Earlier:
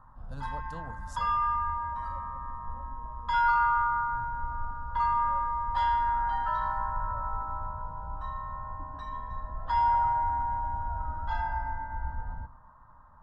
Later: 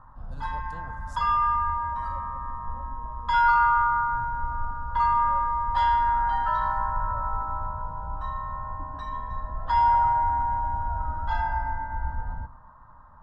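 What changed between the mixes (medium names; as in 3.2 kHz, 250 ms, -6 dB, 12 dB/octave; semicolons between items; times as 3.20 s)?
speech -3.0 dB; background +4.5 dB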